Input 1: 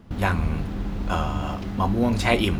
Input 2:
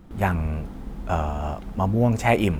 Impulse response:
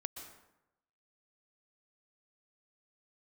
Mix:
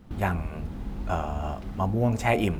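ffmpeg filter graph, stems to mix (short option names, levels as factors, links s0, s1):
-filter_complex "[0:a]volume=0.422[s0];[1:a]bandreject=f=77.91:t=h:w=4,bandreject=f=155.82:t=h:w=4,bandreject=f=233.73:t=h:w=4,bandreject=f=311.64:t=h:w=4,bandreject=f=389.55:t=h:w=4,bandreject=f=467.46:t=h:w=4,bandreject=f=545.37:t=h:w=4,bandreject=f=623.28:t=h:w=4,bandreject=f=701.19:t=h:w=4,bandreject=f=779.1:t=h:w=4,bandreject=f=857.01:t=h:w=4,volume=0.668,asplit=2[s1][s2];[s2]apad=whole_len=114316[s3];[s0][s3]sidechaincompress=threshold=0.0224:ratio=8:attack=16:release=755[s4];[s4][s1]amix=inputs=2:normalize=0"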